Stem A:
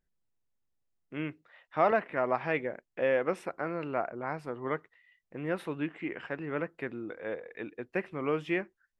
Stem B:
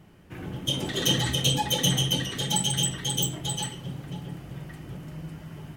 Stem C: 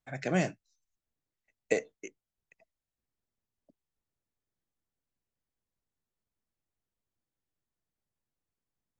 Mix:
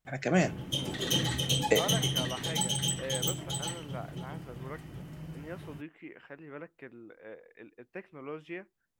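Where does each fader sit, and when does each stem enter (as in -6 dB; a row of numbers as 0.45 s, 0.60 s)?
-10.5 dB, -5.0 dB, +2.5 dB; 0.00 s, 0.05 s, 0.00 s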